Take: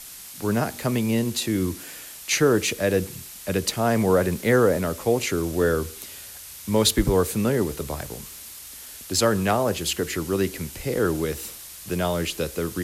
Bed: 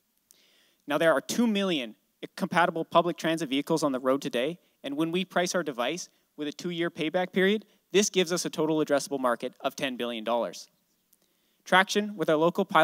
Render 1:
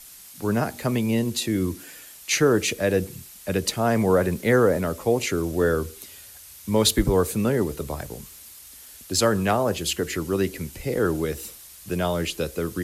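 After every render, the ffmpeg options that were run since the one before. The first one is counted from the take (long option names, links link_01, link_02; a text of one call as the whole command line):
ffmpeg -i in.wav -af "afftdn=noise_reduction=6:noise_floor=-41" out.wav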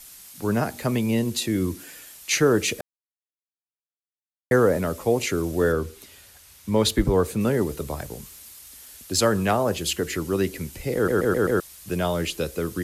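ffmpeg -i in.wav -filter_complex "[0:a]asettb=1/sr,asplit=3[link_01][link_02][link_03];[link_01]atrim=end=5.724[link_04];[link_02]atrim=start=5.72:end=7.41,asetpts=PTS-STARTPTS,afade=type=in:duration=0.004:curve=qsin,afade=type=out:start_time=1.686:duration=0.004:curve=qsin,highshelf=frequency=5400:gain=-8[link_05];[link_03]atrim=start=7.406[link_06];[link_04][link_05]acrossfade=duration=0.004:curve1=hsin:curve2=qsin[link_07];[link_07][link_06]acrossfade=duration=0.004:curve1=qsin:curve2=hsin,asplit=8[link_08][link_09][link_10][link_11][link_12][link_13][link_14][link_15];[link_08]atrim=end=2.81,asetpts=PTS-STARTPTS,afade=type=out:start_time=2.806:duration=0.004:curve=hsin[link_16];[link_09]atrim=start=2.81:end=4.51,asetpts=PTS-STARTPTS,volume=0[link_17];[link_10]atrim=start=4.51:end=11.082,asetpts=PTS-STARTPTS,afade=type=in:duration=0.004:curve=hsin[link_18];[link_11]atrim=start=10.948:end=11.082[link_19];[link_12]atrim=start=10.948:end=11.082[link_20];[link_13]atrim=start=10.948:end=11.082[link_21];[link_14]atrim=start=10.948:end=11.082[link_22];[link_15]atrim=start=11.598[link_23];[link_16][link_17][link_18]concat=n=3:v=0:a=1[link_24];[link_24][link_19]acrossfade=duration=0.004:curve1=hsin:curve2=hsin[link_25];[link_25][link_20]acrossfade=duration=0.004:curve1=hsin:curve2=hsin[link_26];[link_26][link_21]acrossfade=duration=0.004:curve1=hsin:curve2=hsin[link_27];[link_27][link_22]acrossfade=duration=0.004:curve1=hsin:curve2=hsin[link_28];[link_28][link_23]acrossfade=duration=0.004:curve1=hsin:curve2=hsin" out.wav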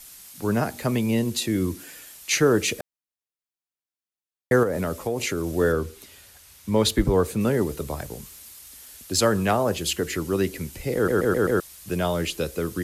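ffmpeg -i in.wav -filter_complex "[0:a]asettb=1/sr,asplit=3[link_01][link_02][link_03];[link_01]atrim=end=4.634[link_04];[link_02]atrim=start=4.63:end=5.49,asetpts=PTS-STARTPTS,afade=type=in:duration=0.004:curve=qsin,afade=type=out:start_time=0.856:duration=0.004:curve=qsin,acompressor=threshold=-21dB:ratio=5:attack=3.2:release=140:knee=1:detection=peak[link_05];[link_03]atrim=start=5.486[link_06];[link_04][link_05]acrossfade=duration=0.004:curve1=hsin:curve2=qsin[link_07];[link_07][link_06]acrossfade=duration=0.004:curve1=qsin:curve2=hsin" out.wav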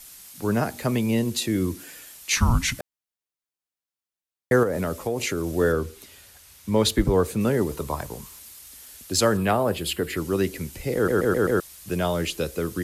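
ffmpeg -i in.wav -filter_complex "[0:a]asettb=1/sr,asplit=3[link_01][link_02][link_03];[link_01]atrim=end=2.364[link_04];[link_02]atrim=start=2.36:end=2.79,asetpts=PTS-STARTPTS,afade=type=in:duration=0.004:curve=qsin,afade=type=out:start_time=0.426:duration=0.004:curve=qsin,afreqshift=-360[link_05];[link_03]atrim=start=2.786[link_06];[link_04][link_05]acrossfade=duration=0.004:curve1=hsin:curve2=qsin[link_07];[link_07][link_06]acrossfade=duration=0.004:curve1=qsin:curve2=hsin,asettb=1/sr,asplit=3[link_08][link_09][link_10];[link_08]atrim=end=7.714[link_11];[link_09]atrim=start=7.71:end=8.39,asetpts=PTS-STARTPTS,afade=type=in:duration=0.004:curve=qsin,afade=type=out:start_time=0.676:duration=0.004:curve=qsin,equalizer=frequency=1000:width=3.3:gain=10[link_12];[link_10]atrim=start=8.386[link_13];[link_11][link_12]acrossfade=duration=0.004:curve1=hsin:curve2=qsin[link_14];[link_14][link_13]acrossfade=duration=0.004:curve1=qsin:curve2=hsin,asettb=1/sr,asplit=3[link_15][link_16][link_17];[link_15]atrim=end=9.374[link_18];[link_16]atrim=start=9.37:end=10.17,asetpts=PTS-STARTPTS,afade=type=in:duration=0.004:curve=qsin,afade=type=out:start_time=0.796:duration=0.004:curve=qsin,equalizer=frequency=6200:width_type=o:width=0.45:gain=-12[link_19];[link_17]atrim=start=10.166[link_20];[link_18][link_19]acrossfade=duration=0.004:curve1=hsin:curve2=qsin[link_21];[link_21][link_20]acrossfade=duration=0.004:curve1=qsin:curve2=hsin" out.wav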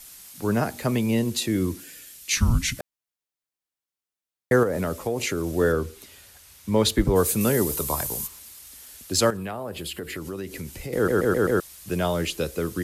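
ffmpeg -i in.wav -filter_complex "[0:a]asettb=1/sr,asplit=3[link_01][link_02][link_03];[link_01]atrim=end=1.804[link_04];[link_02]atrim=start=1.8:end=2.77,asetpts=PTS-STARTPTS,afade=type=in:duration=0.004:curve=qsin,afade=type=out:start_time=0.966:duration=0.004:curve=qsin,equalizer=frequency=890:width_type=o:width=1.4:gain=-11[link_05];[link_03]atrim=start=2.766[link_06];[link_04][link_05]acrossfade=duration=0.004:curve1=hsin:curve2=qsin[link_07];[link_07][link_06]acrossfade=duration=0.004:curve1=qsin:curve2=hsin,asplit=3[link_08][link_09][link_10];[link_08]afade=type=out:start_time=7.15:duration=0.02[link_11];[link_09]aemphasis=mode=production:type=75kf,afade=type=in:start_time=7.15:duration=0.02,afade=type=out:start_time=8.26:duration=0.02[link_12];[link_10]afade=type=in:start_time=8.26:duration=0.02[link_13];[link_11][link_12][link_13]amix=inputs=3:normalize=0,asettb=1/sr,asplit=3[link_14][link_15][link_16];[link_14]atrim=end=9.304[link_17];[link_15]atrim=start=9.3:end=10.93,asetpts=PTS-STARTPTS,afade=type=in:duration=0.004:curve=qsin,afade=type=out:start_time=1.626:duration=0.004:curve=qsin,acompressor=threshold=-30dB:ratio=4:attack=3.2:release=140:knee=1:detection=peak[link_18];[link_16]atrim=start=10.926[link_19];[link_17][link_18]acrossfade=duration=0.004:curve1=hsin:curve2=qsin[link_20];[link_20][link_19]acrossfade=duration=0.004:curve1=qsin:curve2=hsin" out.wav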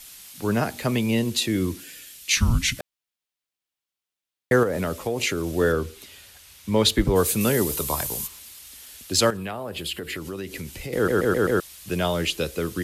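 ffmpeg -i in.wav -af "equalizer=frequency=3100:width_type=o:width=1.3:gain=5.5" out.wav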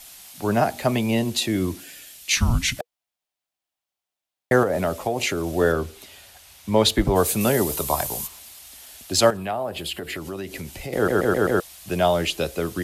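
ffmpeg -i in.wav -af "equalizer=frequency=710:width=1.9:gain=9.5,bandreject=frequency=480:width=12" out.wav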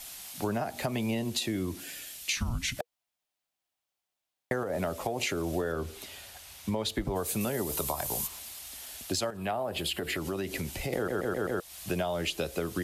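ffmpeg -i in.wav -af "alimiter=limit=-12dB:level=0:latency=1:release=242,acompressor=threshold=-28dB:ratio=6" out.wav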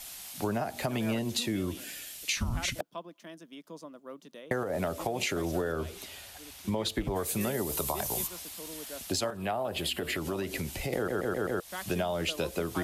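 ffmpeg -i in.wav -i bed.wav -filter_complex "[1:a]volume=-19.5dB[link_01];[0:a][link_01]amix=inputs=2:normalize=0" out.wav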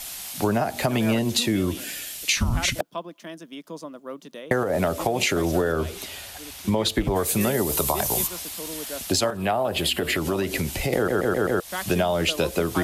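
ffmpeg -i in.wav -af "volume=8.5dB" out.wav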